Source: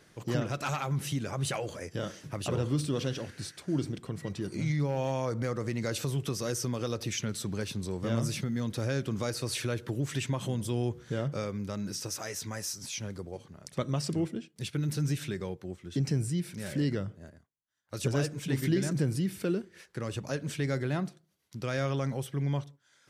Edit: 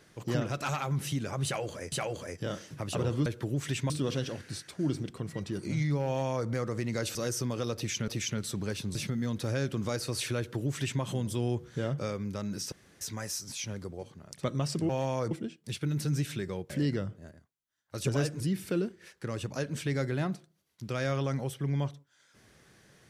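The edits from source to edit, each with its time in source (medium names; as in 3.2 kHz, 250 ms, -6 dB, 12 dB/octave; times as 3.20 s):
1.45–1.92 s: loop, 2 plays
4.95–5.37 s: copy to 14.23 s
6.04–6.38 s: delete
6.99–7.31 s: loop, 2 plays
7.86–8.29 s: delete
9.72–10.36 s: copy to 2.79 s
12.06–12.35 s: room tone
15.62–16.69 s: delete
18.39–19.13 s: delete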